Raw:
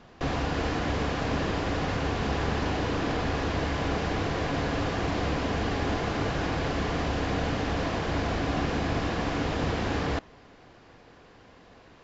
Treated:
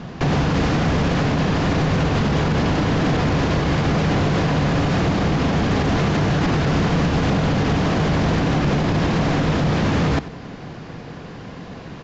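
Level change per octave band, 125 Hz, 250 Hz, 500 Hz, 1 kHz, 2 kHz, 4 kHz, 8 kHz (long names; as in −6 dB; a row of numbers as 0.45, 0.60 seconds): +12.5 dB, +11.0 dB, +7.5 dB, +7.0 dB, +7.0 dB, +7.5 dB, can't be measured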